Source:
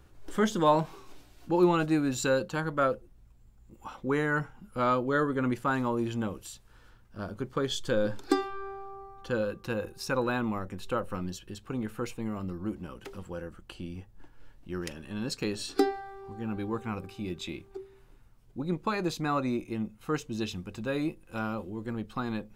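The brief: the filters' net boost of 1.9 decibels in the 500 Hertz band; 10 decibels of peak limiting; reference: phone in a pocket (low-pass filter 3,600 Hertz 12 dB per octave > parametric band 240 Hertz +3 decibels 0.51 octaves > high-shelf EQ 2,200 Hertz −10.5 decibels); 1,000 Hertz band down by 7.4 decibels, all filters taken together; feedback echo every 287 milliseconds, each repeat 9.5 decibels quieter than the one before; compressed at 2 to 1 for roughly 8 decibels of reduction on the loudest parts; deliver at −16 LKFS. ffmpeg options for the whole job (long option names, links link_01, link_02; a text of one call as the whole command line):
ffmpeg -i in.wav -af "equalizer=frequency=500:width_type=o:gain=4.5,equalizer=frequency=1000:width_type=o:gain=-8.5,acompressor=threshold=-32dB:ratio=2,alimiter=level_in=2.5dB:limit=-24dB:level=0:latency=1,volume=-2.5dB,lowpass=3600,equalizer=frequency=240:width_type=o:width=0.51:gain=3,highshelf=frequency=2200:gain=-10.5,aecho=1:1:287|574|861|1148:0.335|0.111|0.0365|0.012,volume=20.5dB" out.wav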